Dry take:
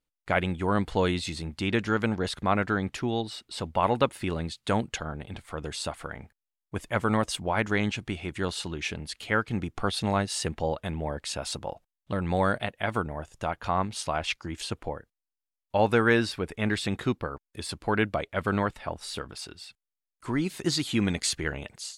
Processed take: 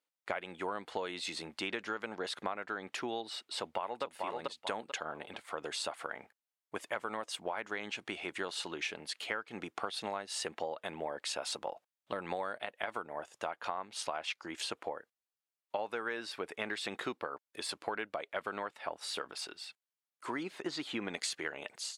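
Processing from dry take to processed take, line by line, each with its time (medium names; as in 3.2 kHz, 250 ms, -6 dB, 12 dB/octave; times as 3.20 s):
3.56–4.03 s: echo throw 440 ms, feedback 20%, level -4 dB
20.43–21.14 s: low-pass 1.8 kHz 6 dB/octave
whole clip: high-pass 460 Hz 12 dB/octave; treble shelf 4.9 kHz -5.5 dB; compression 12:1, threshold -34 dBFS; trim +1 dB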